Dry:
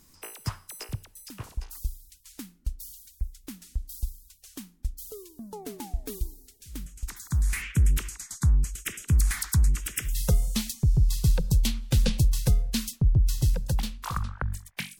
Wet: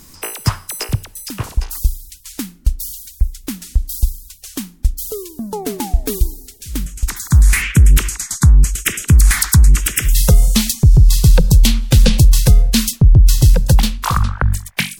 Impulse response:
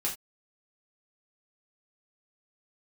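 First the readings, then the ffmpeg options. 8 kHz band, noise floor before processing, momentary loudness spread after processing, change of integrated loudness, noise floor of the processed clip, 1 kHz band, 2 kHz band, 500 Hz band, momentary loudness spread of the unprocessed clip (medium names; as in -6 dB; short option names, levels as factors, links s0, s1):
+15.0 dB, -59 dBFS, 16 LU, +13.5 dB, -43 dBFS, +15.0 dB, +15.5 dB, +14.5 dB, 18 LU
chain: -af "alimiter=level_in=7.08:limit=0.891:release=50:level=0:latency=1,volume=0.891"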